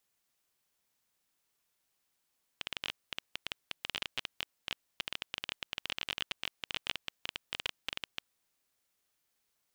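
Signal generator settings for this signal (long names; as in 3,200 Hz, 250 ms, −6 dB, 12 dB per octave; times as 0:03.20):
Geiger counter clicks 16 per second −17 dBFS 5.73 s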